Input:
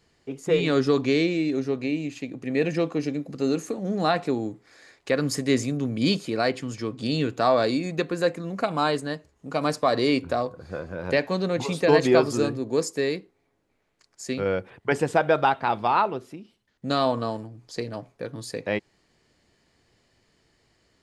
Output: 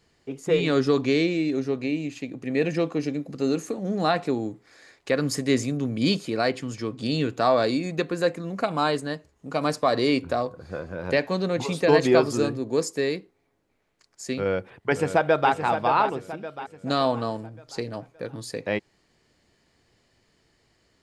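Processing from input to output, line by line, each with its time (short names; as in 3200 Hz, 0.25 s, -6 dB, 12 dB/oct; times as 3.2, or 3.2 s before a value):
14.39–15.52 echo throw 0.57 s, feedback 45%, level -8.5 dB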